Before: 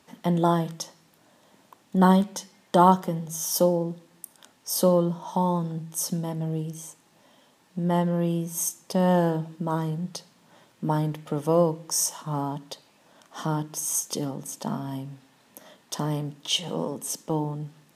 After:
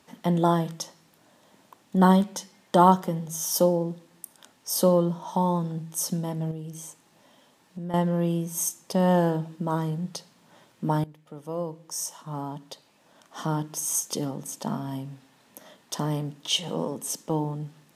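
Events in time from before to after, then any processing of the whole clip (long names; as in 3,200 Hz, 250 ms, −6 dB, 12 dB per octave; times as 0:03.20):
0:06.51–0:07.94: downward compressor 2.5 to 1, threshold −35 dBFS
0:11.04–0:13.63: fade in, from −19.5 dB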